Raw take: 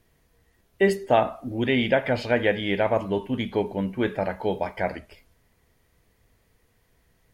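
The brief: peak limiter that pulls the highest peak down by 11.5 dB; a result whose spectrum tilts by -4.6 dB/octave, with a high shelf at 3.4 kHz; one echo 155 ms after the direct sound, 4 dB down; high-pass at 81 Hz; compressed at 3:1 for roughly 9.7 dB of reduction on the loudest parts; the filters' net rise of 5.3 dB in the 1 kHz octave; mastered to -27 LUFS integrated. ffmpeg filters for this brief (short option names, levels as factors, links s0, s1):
-af "highpass=81,equalizer=f=1000:t=o:g=8,highshelf=f=3400:g=-5,acompressor=threshold=0.0708:ratio=3,alimiter=limit=0.0794:level=0:latency=1,aecho=1:1:155:0.631,volume=1.78"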